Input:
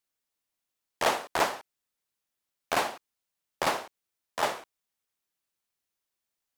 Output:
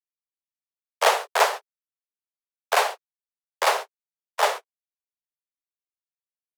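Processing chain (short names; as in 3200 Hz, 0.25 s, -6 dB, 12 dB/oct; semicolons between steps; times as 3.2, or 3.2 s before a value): gate -35 dBFS, range -38 dB; steep high-pass 400 Hz 96 dB/oct; gain +7 dB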